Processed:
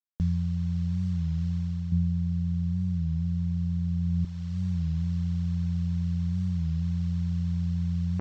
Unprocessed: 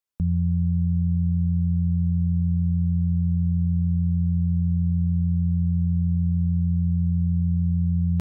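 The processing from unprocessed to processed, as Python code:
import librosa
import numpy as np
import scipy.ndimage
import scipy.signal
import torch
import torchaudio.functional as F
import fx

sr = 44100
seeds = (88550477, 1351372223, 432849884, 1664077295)

y = fx.cvsd(x, sr, bps=32000)
y = np.sign(y) * np.maximum(np.abs(y) - 10.0 ** (-57.5 / 20.0), 0.0)
y = fx.peak_eq(y, sr, hz=140.0, db=6.5, octaves=2.4, at=(1.92, 4.25))
y = fx.dereverb_blind(y, sr, rt60_s=1.4)
y = fx.rider(y, sr, range_db=3, speed_s=0.5)
y = fx.record_warp(y, sr, rpm=33.33, depth_cents=100.0)
y = y * 10.0 ** (-3.0 / 20.0)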